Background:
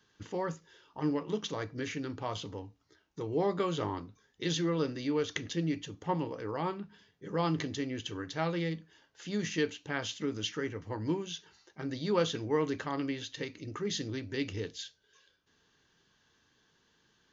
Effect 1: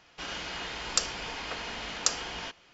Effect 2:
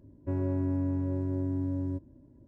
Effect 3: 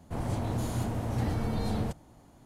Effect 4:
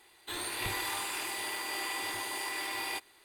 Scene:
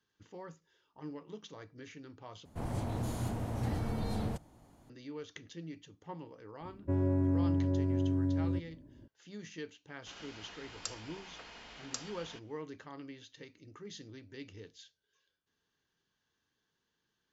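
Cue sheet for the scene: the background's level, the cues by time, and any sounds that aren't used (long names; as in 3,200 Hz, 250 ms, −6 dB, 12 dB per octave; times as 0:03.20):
background −13 dB
0:02.45: overwrite with 3 −4.5 dB
0:06.61: mix in 2
0:09.88: mix in 1 −14 dB
not used: 4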